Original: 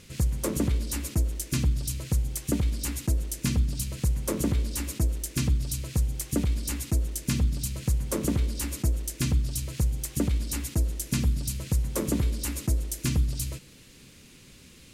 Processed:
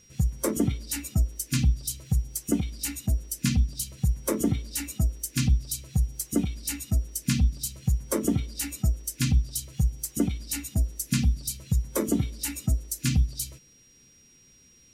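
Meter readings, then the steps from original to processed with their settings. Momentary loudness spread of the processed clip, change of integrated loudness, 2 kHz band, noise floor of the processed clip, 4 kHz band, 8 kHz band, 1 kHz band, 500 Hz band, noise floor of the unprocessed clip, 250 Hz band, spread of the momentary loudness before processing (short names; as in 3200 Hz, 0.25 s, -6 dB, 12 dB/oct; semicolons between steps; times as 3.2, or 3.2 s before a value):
5 LU, +0.5 dB, +1.0 dB, -57 dBFS, +1.0 dB, +1.5 dB, 0.0 dB, +1.0 dB, -52 dBFS, +2.0 dB, 3 LU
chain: spectral noise reduction 13 dB; whine 5700 Hz -59 dBFS; gain +3 dB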